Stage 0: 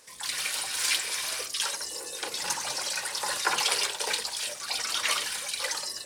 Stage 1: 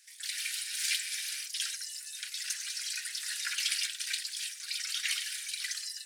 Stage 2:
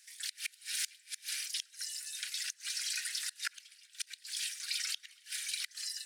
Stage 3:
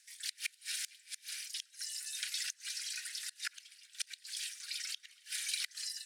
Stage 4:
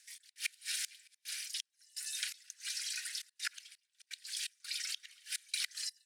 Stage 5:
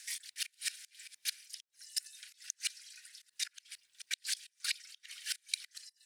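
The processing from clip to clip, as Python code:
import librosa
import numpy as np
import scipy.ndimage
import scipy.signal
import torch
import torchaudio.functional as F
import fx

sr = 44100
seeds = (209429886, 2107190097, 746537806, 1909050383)

y1 = scipy.signal.sosfilt(scipy.signal.butter(8, 1600.0, 'highpass', fs=sr, output='sos'), x)
y1 = y1 * librosa.db_to_amplitude(-4.5)
y2 = fx.gate_flip(y1, sr, shuts_db=-22.0, range_db=-27)
y3 = fx.rotary_switch(y2, sr, hz=6.0, then_hz=0.6, switch_at_s=0.32)
y3 = y3 * librosa.db_to_amplitude(1.0)
y4 = fx.step_gate(y3, sr, bpm=84, pattern='x.xxxx.xx..x', floor_db=-24.0, edge_ms=4.5)
y4 = y4 * librosa.db_to_amplitude(1.5)
y5 = fx.gate_flip(y4, sr, shuts_db=-31.0, range_db=-25)
y5 = y5 * librosa.db_to_amplitude(11.0)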